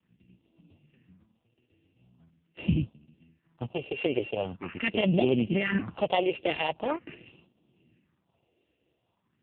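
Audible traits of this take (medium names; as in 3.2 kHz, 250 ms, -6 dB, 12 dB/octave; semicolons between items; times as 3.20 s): a buzz of ramps at a fixed pitch in blocks of 16 samples; phasing stages 4, 0.43 Hz, lowest notch 180–1700 Hz; random-step tremolo; AMR-NB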